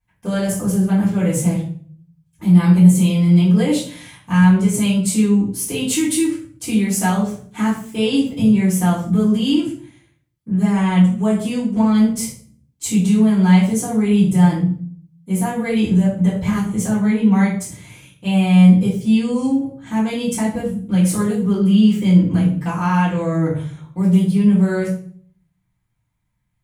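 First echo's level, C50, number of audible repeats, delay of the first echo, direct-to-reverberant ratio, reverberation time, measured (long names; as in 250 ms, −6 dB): no echo audible, 6.0 dB, no echo audible, no echo audible, −9.5 dB, 0.50 s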